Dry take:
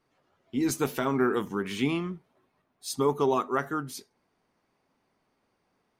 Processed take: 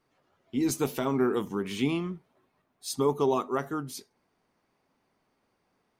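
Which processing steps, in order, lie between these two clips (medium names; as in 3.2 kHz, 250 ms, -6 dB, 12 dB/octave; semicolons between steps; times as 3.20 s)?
dynamic bell 1.6 kHz, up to -7 dB, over -46 dBFS, Q 1.7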